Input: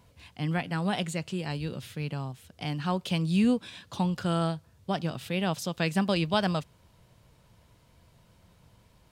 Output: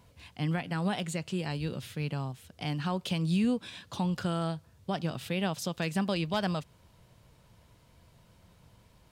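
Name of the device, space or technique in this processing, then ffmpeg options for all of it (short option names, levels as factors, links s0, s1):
clipper into limiter: -af "asoftclip=type=hard:threshold=0.158,alimiter=limit=0.0944:level=0:latency=1:release=135"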